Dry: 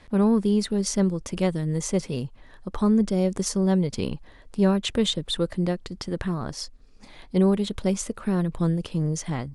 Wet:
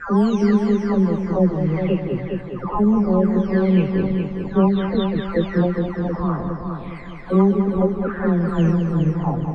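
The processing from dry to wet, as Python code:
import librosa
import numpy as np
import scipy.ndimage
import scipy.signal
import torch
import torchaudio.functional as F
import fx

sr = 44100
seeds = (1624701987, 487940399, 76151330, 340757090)

y = fx.spec_delay(x, sr, highs='early', ms=691)
y = fx.filter_lfo_lowpass(y, sr, shape='sine', hz=0.62, low_hz=890.0, high_hz=2200.0, q=2.5)
y = fx.echo_heads(y, sr, ms=206, heads='first and second', feedback_pct=47, wet_db=-8.0)
y = F.gain(torch.from_numpy(y), 4.5).numpy()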